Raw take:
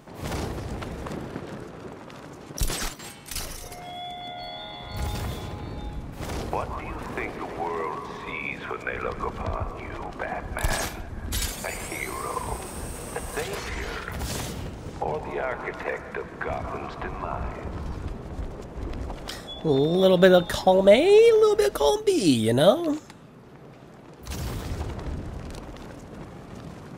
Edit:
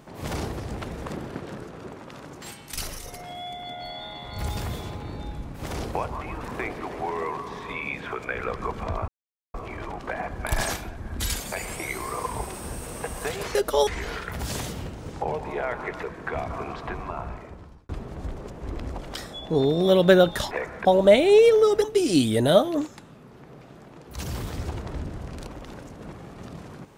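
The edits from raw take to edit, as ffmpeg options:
ffmpeg -i in.wav -filter_complex "[0:a]asplit=10[link_01][link_02][link_03][link_04][link_05][link_06][link_07][link_08][link_09][link_10];[link_01]atrim=end=2.422[link_11];[link_02]atrim=start=2.998:end=9.66,asetpts=PTS-STARTPTS,afade=type=out:start_time=6.658:duration=0.004:curve=hsin,apad=pad_dur=0.46[link_12];[link_03]atrim=start=9.66:end=13.672,asetpts=PTS-STARTPTS,afade=type=in:duration=0.004:curve=hsin[link_13];[link_04]atrim=start=21.618:end=21.942[link_14];[link_05]atrim=start=13.668:end=15.832[link_15];[link_06]atrim=start=16.168:end=18.03,asetpts=PTS-STARTPTS,afade=type=out:start_time=0.922:duration=0.94[link_16];[link_07]atrim=start=18.03:end=20.652,asetpts=PTS-STARTPTS,afade=type=in:duration=0.004:curve=hsin[link_17];[link_08]atrim=start=15.828:end=16.172[link_18];[link_09]atrim=start=20.648:end=21.622[link_19];[link_10]atrim=start=21.938[link_20];[link_12][link_13]concat=n=2:v=0:a=1[link_21];[link_11][link_21]acrossfade=duration=0.004:curve1=hsin:curve2=hsin[link_22];[link_22][link_14]acrossfade=duration=0.004:curve1=hsin:curve2=hsin[link_23];[link_23][link_15]acrossfade=duration=0.004:curve1=hsin:curve2=hsin[link_24];[link_16][link_17]concat=n=2:v=0:a=1[link_25];[link_24][link_25]acrossfade=duration=0.004:curve1=hsin:curve2=hsin[link_26];[link_26][link_18]acrossfade=duration=0.004:curve1=hsin:curve2=hsin[link_27];[link_27][link_19]acrossfade=duration=0.004:curve1=hsin:curve2=hsin[link_28];[link_28][link_20]acrossfade=duration=0.004:curve1=hsin:curve2=hsin" out.wav

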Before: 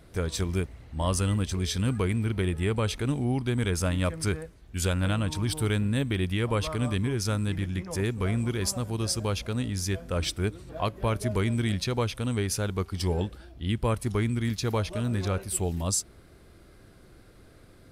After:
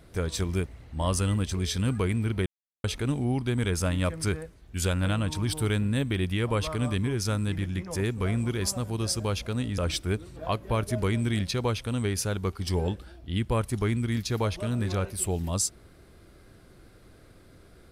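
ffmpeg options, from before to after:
ffmpeg -i in.wav -filter_complex "[0:a]asplit=4[link_01][link_02][link_03][link_04];[link_01]atrim=end=2.46,asetpts=PTS-STARTPTS,afade=type=out:start_time=2.456:duration=0.004:curve=hsin[link_05];[link_02]atrim=start=2.46:end=2.84,asetpts=PTS-STARTPTS,volume=0[link_06];[link_03]atrim=start=2.84:end=9.782,asetpts=PTS-STARTPTS,afade=type=in:duration=0.004:curve=hsin[link_07];[link_04]atrim=start=10.108[link_08];[link_05][link_06][link_07]concat=n=3:v=0:a=1[link_09];[link_09][link_08]acrossfade=duration=0.004:curve1=hsin:curve2=hsin" out.wav

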